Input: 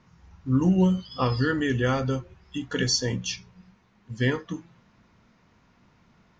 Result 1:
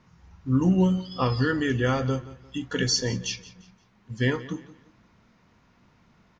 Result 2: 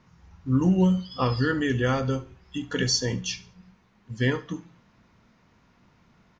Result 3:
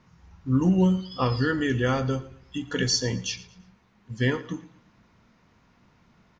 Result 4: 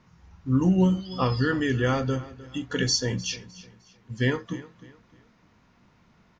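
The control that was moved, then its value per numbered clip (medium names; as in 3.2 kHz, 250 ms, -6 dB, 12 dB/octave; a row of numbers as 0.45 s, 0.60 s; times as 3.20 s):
feedback delay, time: 174 ms, 71 ms, 113 ms, 305 ms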